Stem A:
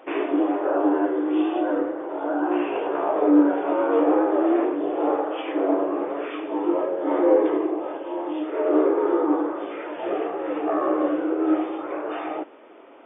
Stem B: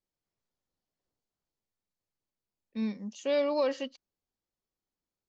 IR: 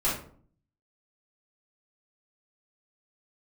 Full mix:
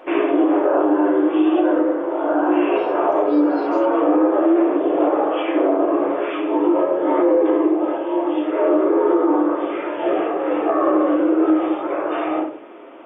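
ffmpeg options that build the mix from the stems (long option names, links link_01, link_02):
-filter_complex "[0:a]volume=2.5dB,asplit=2[link_01][link_02];[link_02]volume=-10dB[link_03];[1:a]agate=range=-14dB:threshold=-42dB:ratio=16:detection=peak,highpass=frequency=480:width=0.5412,highpass=frequency=480:width=1.3066,volume=-6dB,asplit=3[link_04][link_05][link_06];[link_05]volume=-16dB[link_07];[link_06]apad=whole_len=575605[link_08];[link_01][link_08]sidechaincompress=threshold=-52dB:ratio=8:attack=16:release=561[link_09];[2:a]atrim=start_sample=2205[link_10];[link_03][link_07]amix=inputs=2:normalize=0[link_11];[link_11][link_10]afir=irnorm=-1:irlink=0[link_12];[link_09][link_04][link_12]amix=inputs=3:normalize=0,alimiter=limit=-8dB:level=0:latency=1:release=116"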